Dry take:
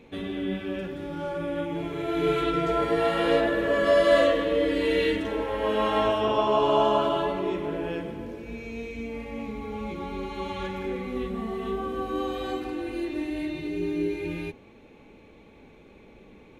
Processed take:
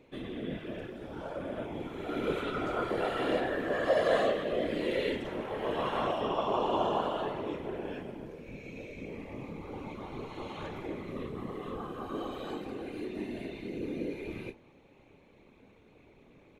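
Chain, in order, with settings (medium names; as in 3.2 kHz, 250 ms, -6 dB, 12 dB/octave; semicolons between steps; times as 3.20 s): whisper effect; doubling 30 ms -12 dB; trim -8 dB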